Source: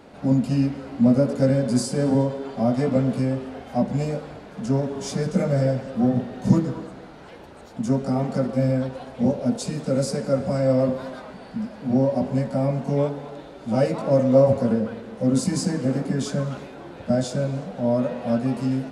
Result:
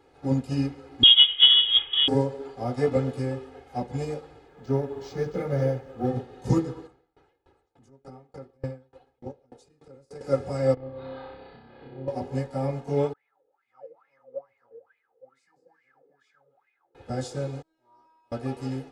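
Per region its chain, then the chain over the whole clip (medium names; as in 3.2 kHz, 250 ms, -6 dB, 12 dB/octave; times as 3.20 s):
1.03–2.08 s: CVSD coder 32 kbps + frequency inversion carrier 3.5 kHz + transformer saturation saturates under 350 Hz
4.48–6.05 s: treble shelf 6.3 kHz -7 dB + decimation joined by straight lines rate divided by 4×
6.87–10.21 s: treble shelf 3.9 kHz -7 dB + transient shaper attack -10 dB, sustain -3 dB + sawtooth tremolo in dB decaying 3.4 Hz, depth 28 dB
10.74–12.08 s: steep low-pass 4.4 kHz 72 dB/octave + compression, threshold -32 dBFS + flutter echo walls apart 5.2 m, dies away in 0.89 s
13.13–16.95 s: peaking EQ 430 Hz -8 dB 2 oct + wah-wah 2.3 Hz 460–2300 Hz, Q 13
17.62–18.32 s: feedback comb 320 Hz, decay 0.98 s, mix 100% + loudspeaker Doppler distortion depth 0.13 ms
whole clip: comb 2.4 ms, depth 86%; upward expansion 1.5:1, over -38 dBFS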